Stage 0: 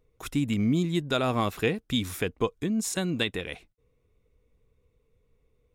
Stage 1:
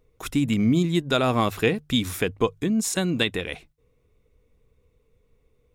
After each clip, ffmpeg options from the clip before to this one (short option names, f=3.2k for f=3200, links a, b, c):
-af "bandreject=f=50:t=h:w=6,bandreject=f=100:t=h:w=6,bandreject=f=150:t=h:w=6,volume=4.5dB"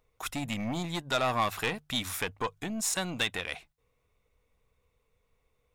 -af "aeval=exprs='(tanh(7.94*val(0)+0.3)-tanh(0.3))/7.94':c=same,lowshelf=f=550:t=q:w=1.5:g=-8.5,volume=-1dB"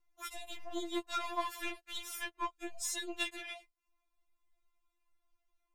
-af "afftfilt=real='re*4*eq(mod(b,16),0)':imag='im*4*eq(mod(b,16),0)':win_size=2048:overlap=0.75,volume=-5dB"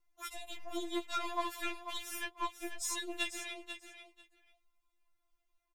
-af "aecho=1:1:492|984:0.335|0.0536"